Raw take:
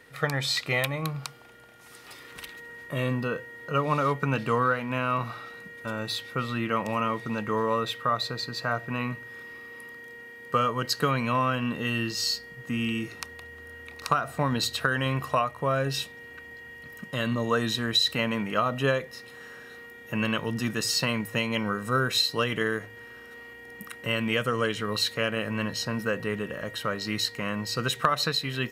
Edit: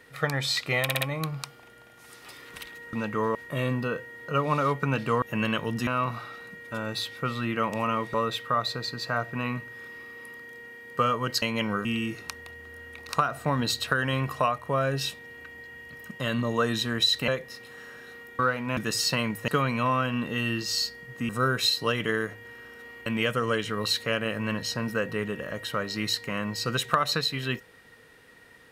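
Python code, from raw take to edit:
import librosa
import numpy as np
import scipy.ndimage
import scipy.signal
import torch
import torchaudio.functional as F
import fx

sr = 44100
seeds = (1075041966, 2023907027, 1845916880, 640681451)

y = fx.edit(x, sr, fx.stutter(start_s=0.83, slice_s=0.06, count=4),
    fx.swap(start_s=4.62, length_s=0.38, other_s=20.02, other_length_s=0.65),
    fx.move(start_s=7.27, length_s=0.42, to_s=2.75),
    fx.swap(start_s=10.97, length_s=1.81, other_s=21.38, other_length_s=0.43),
    fx.cut(start_s=18.21, length_s=0.7),
    fx.cut(start_s=23.58, length_s=0.59), tone=tone)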